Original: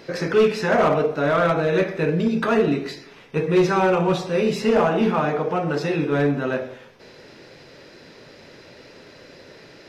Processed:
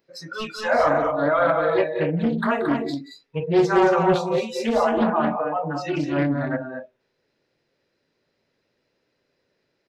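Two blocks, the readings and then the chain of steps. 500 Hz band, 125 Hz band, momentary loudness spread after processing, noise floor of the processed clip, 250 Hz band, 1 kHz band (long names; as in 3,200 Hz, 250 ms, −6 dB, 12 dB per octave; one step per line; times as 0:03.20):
−2.0 dB, −4.0 dB, 13 LU, −74 dBFS, −1.5 dB, +1.0 dB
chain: noise reduction from a noise print of the clip's start 28 dB
loudspeakers that aren't time-aligned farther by 62 metres −12 dB, 77 metres −6 dB
highs frequency-modulated by the lows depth 0.34 ms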